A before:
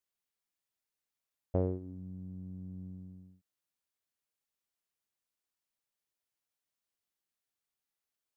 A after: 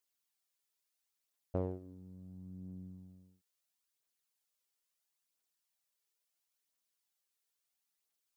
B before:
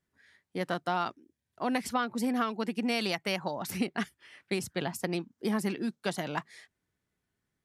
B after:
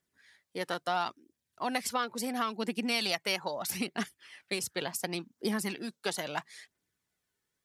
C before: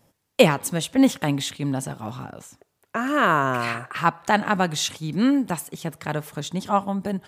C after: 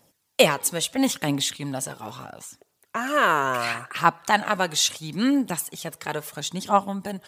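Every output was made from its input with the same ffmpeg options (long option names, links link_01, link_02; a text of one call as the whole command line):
ffmpeg -i in.wav -filter_complex "[0:a]aphaser=in_gain=1:out_gain=1:delay=2.4:decay=0.37:speed=0.74:type=triangular,lowshelf=frequency=180:gain=-10.5,acrossover=split=3300[link_01][link_02];[link_02]acontrast=37[link_03];[link_01][link_03]amix=inputs=2:normalize=0,volume=-1dB" out.wav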